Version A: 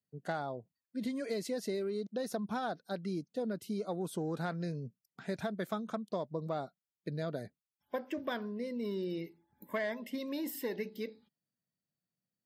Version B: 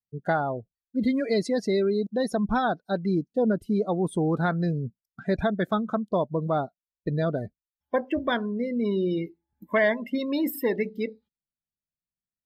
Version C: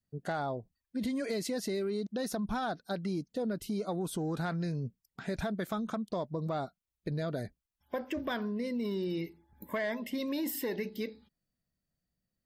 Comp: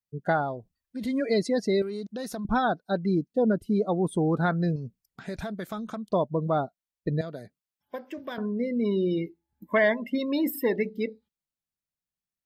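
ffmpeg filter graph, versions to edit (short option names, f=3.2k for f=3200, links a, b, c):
-filter_complex "[2:a]asplit=3[a][b][c];[1:a]asplit=5[d][e][f][g][h];[d]atrim=end=0.56[i];[a]atrim=start=0.4:end=1.2[j];[e]atrim=start=1.04:end=1.822[k];[b]atrim=start=1.818:end=2.452[l];[f]atrim=start=2.448:end=4.762[m];[c]atrim=start=4.758:end=6.132[n];[g]atrim=start=6.128:end=7.212[o];[0:a]atrim=start=7.208:end=8.382[p];[h]atrim=start=8.378[q];[i][j]acrossfade=d=0.16:c1=tri:c2=tri[r];[r][k]acrossfade=d=0.16:c1=tri:c2=tri[s];[s][l]acrossfade=d=0.004:c1=hsin:c2=hsin[t];[t][m]acrossfade=d=0.004:c1=hsin:c2=hsin[u];[u][n]acrossfade=d=0.004:c1=hsin:c2=hsin[v];[v][o]acrossfade=d=0.004:c1=hsin:c2=hsin[w];[w][p]acrossfade=d=0.004:c1=hsin:c2=hsin[x];[x][q]acrossfade=d=0.004:c1=hsin:c2=hsin"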